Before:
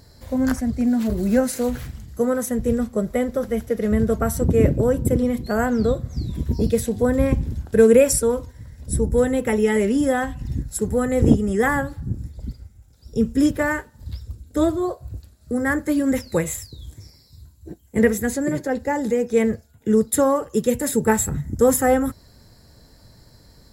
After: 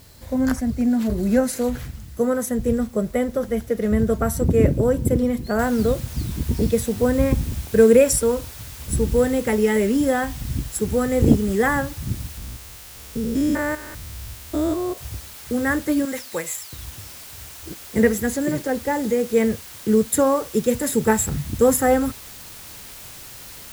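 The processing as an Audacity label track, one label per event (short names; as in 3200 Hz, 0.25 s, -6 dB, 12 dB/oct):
5.590000	5.590000	noise floor step -53 dB -40 dB
12.370000	14.980000	stepped spectrum every 0.2 s
16.050000	16.730000	HPF 840 Hz 6 dB/oct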